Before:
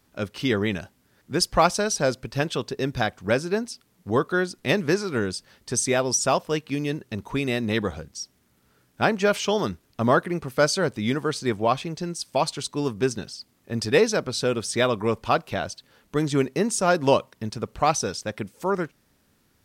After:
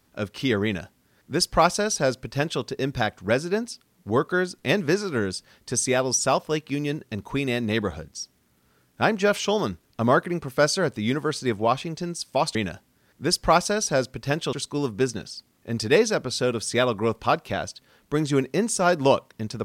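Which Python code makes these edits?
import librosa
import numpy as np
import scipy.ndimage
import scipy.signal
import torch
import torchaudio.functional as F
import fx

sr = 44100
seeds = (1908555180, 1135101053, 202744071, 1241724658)

y = fx.edit(x, sr, fx.duplicate(start_s=0.64, length_s=1.98, to_s=12.55), tone=tone)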